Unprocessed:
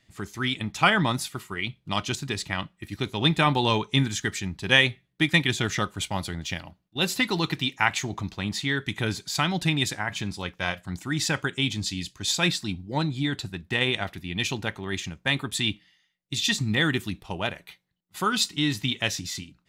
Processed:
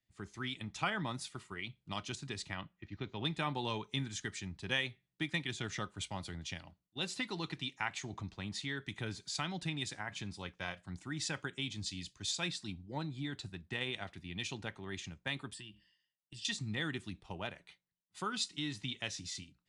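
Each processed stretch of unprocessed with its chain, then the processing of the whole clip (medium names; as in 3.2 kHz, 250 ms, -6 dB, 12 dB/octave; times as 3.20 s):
2.55–3.25 s: low-pass 3.7 kHz + careless resampling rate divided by 3×, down none, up filtered
15.53–16.45 s: rippled EQ curve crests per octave 1.3, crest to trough 14 dB + compression 16:1, threshold -34 dBFS
whole clip: compression 2:1, threshold -31 dBFS; elliptic low-pass 9.8 kHz, stop band 40 dB; three bands expanded up and down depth 40%; trim -7.5 dB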